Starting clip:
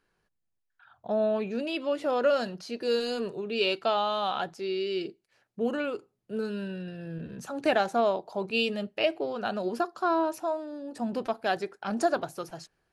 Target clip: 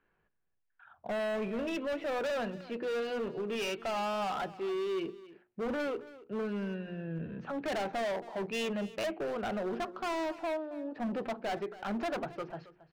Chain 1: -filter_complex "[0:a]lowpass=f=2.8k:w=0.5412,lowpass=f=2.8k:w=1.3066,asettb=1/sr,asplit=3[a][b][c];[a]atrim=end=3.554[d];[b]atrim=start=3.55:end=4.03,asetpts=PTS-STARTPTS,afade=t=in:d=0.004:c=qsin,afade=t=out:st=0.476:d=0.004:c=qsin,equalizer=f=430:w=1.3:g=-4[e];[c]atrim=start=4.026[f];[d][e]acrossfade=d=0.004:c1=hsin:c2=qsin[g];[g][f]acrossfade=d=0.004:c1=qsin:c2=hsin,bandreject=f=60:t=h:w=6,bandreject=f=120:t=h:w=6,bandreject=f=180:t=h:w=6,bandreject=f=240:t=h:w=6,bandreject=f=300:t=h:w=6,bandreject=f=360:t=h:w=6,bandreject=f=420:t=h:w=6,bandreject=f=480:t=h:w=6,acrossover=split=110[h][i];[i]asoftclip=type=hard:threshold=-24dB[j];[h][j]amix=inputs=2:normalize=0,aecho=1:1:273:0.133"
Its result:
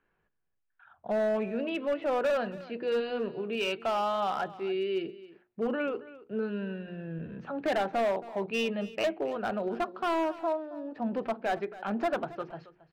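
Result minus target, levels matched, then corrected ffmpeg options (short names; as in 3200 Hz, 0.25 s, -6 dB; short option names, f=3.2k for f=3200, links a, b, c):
hard clip: distortion -6 dB
-filter_complex "[0:a]lowpass=f=2.8k:w=0.5412,lowpass=f=2.8k:w=1.3066,asettb=1/sr,asplit=3[a][b][c];[a]atrim=end=3.554[d];[b]atrim=start=3.55:end=4.03,asetpts=PTS-STARTPTS,afade=t=in:d=0.004:c=qsin,afade=t=out:st=0.476:d=0.004:c=qsin,equalizer=f=430:w=1.3:g=-4[e];[c]atrim=start=4.026[f];[d][e]acrossfade=d=0.004:c1=hsin:c2=qsin[g];[g][f]acrossfade=d=0.004:c1=qsin:c2=hsin,bandreject=f=60:t=h:w=6,bandreject=f=120:t=h:w=6,bandreject=f=180:t=h:w=6,bandreject=f=240:t=h:w=6,bandreject=f=300:t=h:w=6,bandreject=f=360:t=h:w=6,bandreject=f=420:t=h:w=6,bandreject=f=480:t=h:w=6,acrossover=split=110[h][i];[i]asoftclip=type=hard:threshold=-31.5dB[j];[h][j]amix=inputs=2:normalize=0,aecho=1:1:273:0.133"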